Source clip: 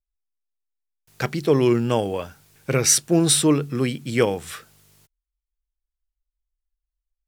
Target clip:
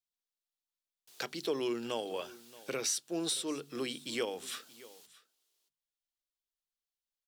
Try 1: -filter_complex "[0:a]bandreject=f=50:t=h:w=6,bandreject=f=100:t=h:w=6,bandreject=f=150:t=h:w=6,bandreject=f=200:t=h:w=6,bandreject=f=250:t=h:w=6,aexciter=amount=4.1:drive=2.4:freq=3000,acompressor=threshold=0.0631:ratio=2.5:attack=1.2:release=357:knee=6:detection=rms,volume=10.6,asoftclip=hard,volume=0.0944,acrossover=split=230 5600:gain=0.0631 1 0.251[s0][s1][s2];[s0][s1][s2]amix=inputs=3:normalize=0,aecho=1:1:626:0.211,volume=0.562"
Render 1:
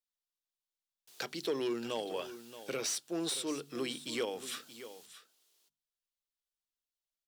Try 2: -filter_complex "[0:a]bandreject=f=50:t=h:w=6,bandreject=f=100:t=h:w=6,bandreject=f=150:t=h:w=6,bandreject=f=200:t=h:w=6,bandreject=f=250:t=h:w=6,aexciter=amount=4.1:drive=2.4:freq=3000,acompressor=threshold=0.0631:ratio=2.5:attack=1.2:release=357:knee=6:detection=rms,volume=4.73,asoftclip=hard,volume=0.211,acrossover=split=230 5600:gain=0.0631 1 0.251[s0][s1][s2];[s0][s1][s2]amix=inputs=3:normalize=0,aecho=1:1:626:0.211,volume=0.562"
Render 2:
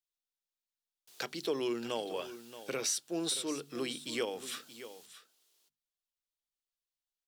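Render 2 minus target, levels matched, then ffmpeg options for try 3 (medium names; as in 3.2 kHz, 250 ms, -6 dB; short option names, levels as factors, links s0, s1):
echo-to-direct +6.5 dB
-filter_complex "[0:a]bandreject=f=50:t=h:w=6,bandreject=f=100:t=h:w=6,bandreject=f=150:t=h:w=6,bandreject=f=200:t=h:w=6,bandreject=f=250:t=h:w=6,aexciter=amount=4.1:drive=2.4:freq=3000,acompressor=threshold=0.0631:ratio=2.5:attack=1.2:release=357:knee=6:detection=rms,volume=4.73,asoftclip=hard,volume=0.211,acrossover=split=230 5600:gain=0.0631 1 0.251[s0][s1][s2];[s0][s1][s2]amix=inputs=3:normalize=0,aecho=1:1:626:0.1,volume=0.562"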